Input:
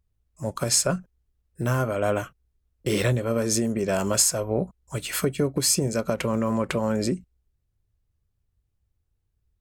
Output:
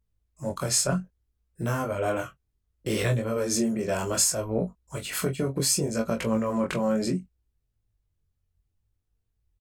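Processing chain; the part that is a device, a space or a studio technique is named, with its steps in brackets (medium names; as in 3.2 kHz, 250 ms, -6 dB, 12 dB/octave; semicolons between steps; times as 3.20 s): double-tracked vocal (doubling 22 ms -8 dB; chorus 0.65 Hz, delay 17.5 ms, depth 6.1 ms)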